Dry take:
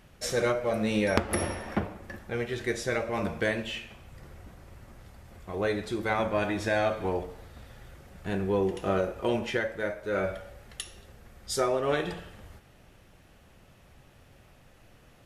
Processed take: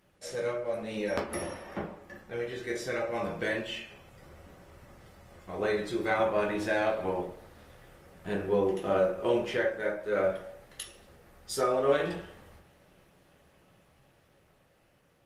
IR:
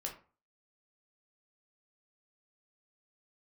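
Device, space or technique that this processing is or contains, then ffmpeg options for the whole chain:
far-field microphone of a smart speaker: -filter_complex "[1:a]atrim=start_sample=2205[a];[0:a][a]afir=irnorm=-1:irlink=0,highpass=f=130:p=1,dynaudnorm=f=720:g=7:m=6.5dB,volume=-6dB" -ar 48000 -c:a libopus -b:a 24k

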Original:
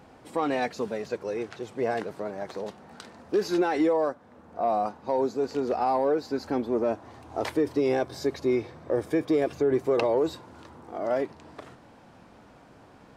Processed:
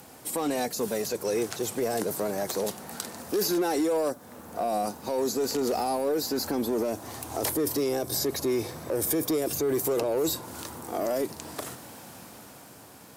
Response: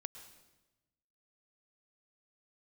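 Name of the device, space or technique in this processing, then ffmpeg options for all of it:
FM broadcast chain: -filter_complex "[0:a]highpass=f=72:w=0.5412,highpass=f=72:w=1.3066,dynaudnorm=f=250:g=9:m=5dB,acrossover=split=610|1400|4200[a][b][c][d];[a]acompressor=threshold=-21dB:ratio=4[e];[b]acompressor=threshold=-36dB:ratio=4[f];[c]acompressor=threshold=-49dB:ratio=4[g];[d]acompressor=threshold=-49dB:ratio=4[h];[e][f][g][h]amix=inputs=4:normalize=0,aemphasis=mode=production:type=50fm,alimiter=limit=-21dB:level=0:latency=1:release=21,asoftclip=type=hard:threshold=-23dB,lowpass=f=15k:w=0.5412,lowpass=f=15k:w=1.3066,aemphasis=mode=production:type=50fm,volume=2dB"

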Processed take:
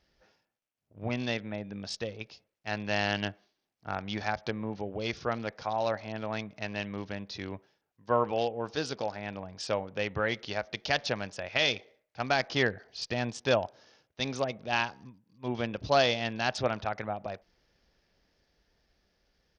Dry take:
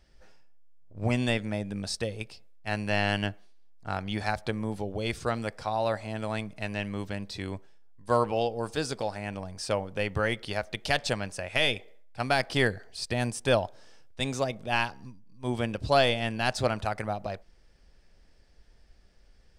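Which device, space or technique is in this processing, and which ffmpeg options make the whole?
Bluetooth headset: -af "highpass=f=140:p=1,dynaudnorm=f=400:g=11:m=3dB,aresample=16000,aresample=44100,volume=-4.5dB" -ar 48000 -c:a sbc -b:a 64k

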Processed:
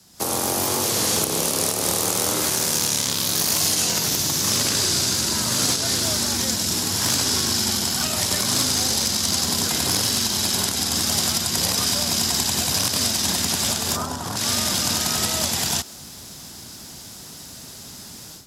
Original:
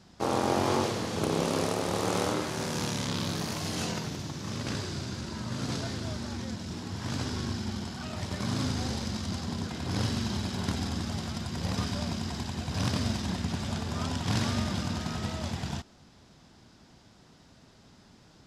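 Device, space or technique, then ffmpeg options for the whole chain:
FM broadcast chain: -filter_complex "[0:a]highpass=41,dynaudnorm=f=140:g=3:m=15dB,acrossover=split=86|300|7900[a][b][c][d];[a]acompressor=threshold=-39dB:ratio=4[e];[b]acompressor=threshold=-30dB:ratio=4[f];[c]acompressor=threshold=-21dB:ratio=4[g];[d]acompressor=threshold=-46dB:ratio=4[h];[e][f][g][h]amix=inputs=4:normalize=0,aemphasis=mode=production:type=50fm,alimiter=limit=-11.5dB:level=0:latency=1:release=187,asoftclip=type=hard:threshold=-14dB,lowpass=f=15k:w=0.5412,lowpass=f=15k:w=1.3066,aemphasis=mode=production:type=50fm,asplit=3[i][j][k];[i]afade=t=out:st=13.95:d=0.02[l];[j]highshelf=f=1.7k:t=q:w=1.5:g=-9.5,afade=t=in:st=13.95:d=0.02,afade=t=out:st=14.36:d=0.02[m];[k]afade=t=in:st=14.36:d=0.02[n];[l][m][n]amix=inputs=3:normalize=0,volume=-2.5dB"

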